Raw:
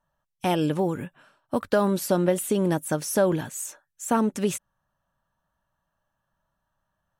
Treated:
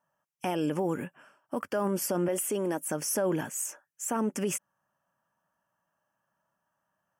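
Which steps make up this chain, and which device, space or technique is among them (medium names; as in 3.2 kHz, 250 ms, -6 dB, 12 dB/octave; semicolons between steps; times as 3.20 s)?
PA system with an anti-feedback notch (high-pass 190 Hz 12 dB/octave; Butterworth band-stop 3.9 kHz, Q 2.4; peak limiter -20.5 dBFS, peak gain reduction 10.5 dB); 2.28–2.88 s: high-pass 240 Hz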